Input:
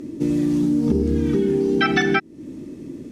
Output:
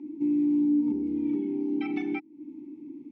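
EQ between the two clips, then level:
formant filter u
−2.5 dB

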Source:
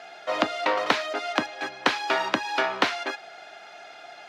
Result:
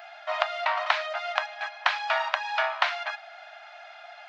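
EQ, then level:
linear-phase brick-wall high-pass 570 Hz
head-to-tape spacing loss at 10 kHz 37 dB
spectral tilt +4 dB per octave
+3.0 dB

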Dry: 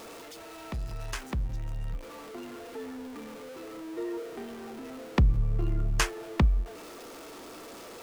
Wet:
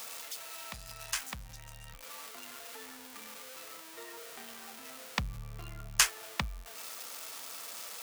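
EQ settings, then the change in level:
spectral tilt +3.5 dB per octave
parametric band 350 Hz −14 dB 0.78 octaves
−2.5 dB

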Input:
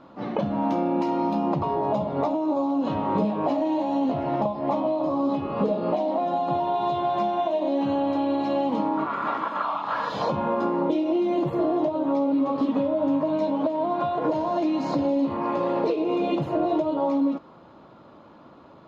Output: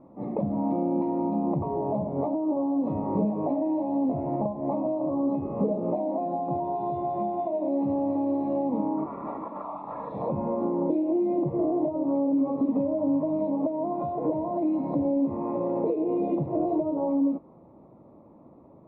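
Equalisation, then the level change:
moving average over 29 samples
high-frequency loss of the air 380 metres
0.0 dB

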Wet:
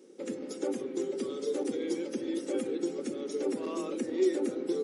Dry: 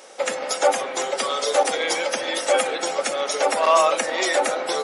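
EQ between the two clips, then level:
drawn EQ curve 160 Hz 0 dB, 230 Hz +4 dB, 380 Hz +5 dB, 650 Hz −28 dB, 6,700 Hz −20 dB
0.0 dB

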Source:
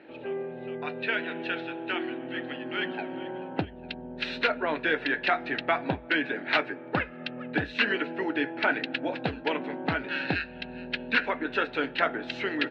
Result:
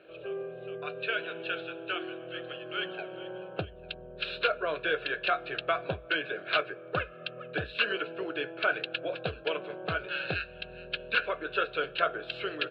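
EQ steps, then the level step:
phaser with its sweep stopped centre 1,300 Hz, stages 8
0.0 dB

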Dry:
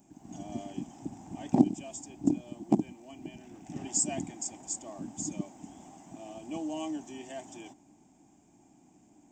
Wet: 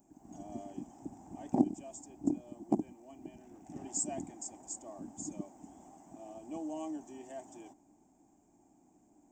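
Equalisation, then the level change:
parametric band 140 Hz −9 dB 2 octaves
parametric band 3,300 Hz −14.5 dB 2.2 octaves
0.0 dB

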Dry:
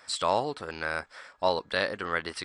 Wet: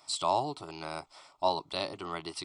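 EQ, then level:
phaser with its sweep stopped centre 330 Hz, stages 8
0.0 dB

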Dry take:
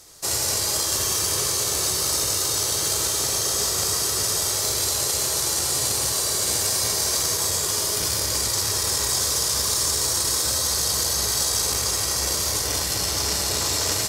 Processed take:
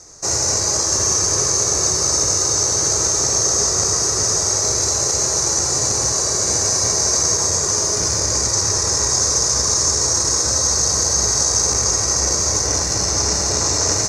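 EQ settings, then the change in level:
low-pass with resonance 6,300 Hz, resonance Q 6.4
high-shelf EQ 2,400 Hz −11.5 dB
parametric band 3,200 Hz −14.5 dB 0.47 octaves
+7.0 dB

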